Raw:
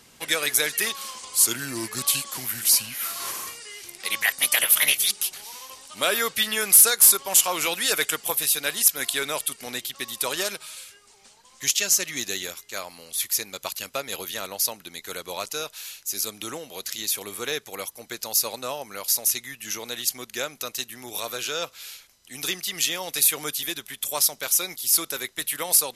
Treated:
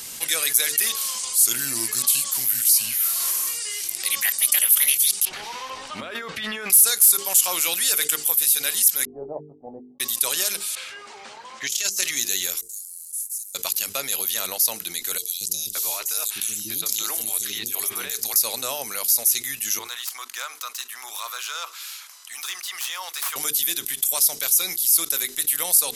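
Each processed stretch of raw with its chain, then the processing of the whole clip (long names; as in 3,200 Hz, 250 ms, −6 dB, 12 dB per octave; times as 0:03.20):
0:05.25–0:06.70: low-pass filter 1,800 Hz + compressor whose output falls as the input rises −36 dBFS
0:09.05–0:10.00: Chebyshev low-pass filter 820 Hz, order 5 + double-tracking delay 20 ms −6.5 dB + expander for the loud parts 2.5 to 1, over −53 dBFS
0:10.75–0:12.11: low-pass that shuts in the quiet parts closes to 1,500 Hz, open at −18.5 dBFS + high-pass filter 350 Hz 6 dB per octave + compressor whose output falls as the input rises −29 dBFS, ratio −0.5
0:12.61–0:13.55: variable-slope delta modulation 64 kbit/s + inverse Chebyshev high-pass filter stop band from 1,500 Hz, stop band 80 dB + spectral tilt −2.5 dB per octave
0:15.18–0:18.36: notch filter 500 Hz, Q 6 + compressor whose output falls as the input rises −34 dBFS + three-band delay without the direct sound highs, lows, mids 230/570 ms, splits 340/3,500 Hz
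0:19.79–0:23.36: phase distortion by the signal itself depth 0.074 ms + resonant band-pass 1,100 Hz, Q 2.9 + spectral tilt +4 dB per octave
whole clip: first-order pre-emphasis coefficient 0.8; mains-hum notches 50/100/150/200/250/300/350/400/450 Hz; envelope flattener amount 50%; level −3 dB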